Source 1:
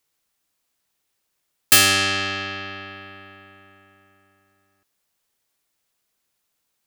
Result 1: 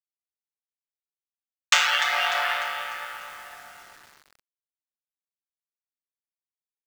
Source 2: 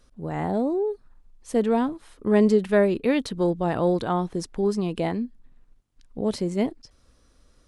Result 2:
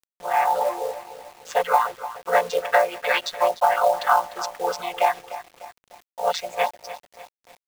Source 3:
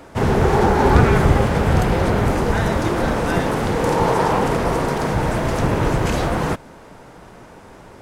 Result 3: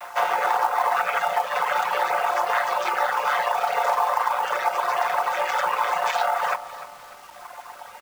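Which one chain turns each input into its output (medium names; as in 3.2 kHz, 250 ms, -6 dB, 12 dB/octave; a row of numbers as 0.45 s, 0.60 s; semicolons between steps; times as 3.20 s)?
vocoder on a held chord major triad, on A#2; reverb removal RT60 1.9 s; inverse Chebyshev high-pass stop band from 310 Hz, stop band 50 dB; treble shelf 3.8 kHz -4.5 dB; comb 5.4 ms, depth 38%; compression 6:1, threshold -38 dBFS; companded quantiser 6-bit; bit-crushed delay 298 ms, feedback 55%, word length 10-bit, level -13.5 dB; normalise loudness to -23 LUFS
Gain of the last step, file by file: +19.0 dB, +24.0 dB, +19.0 dB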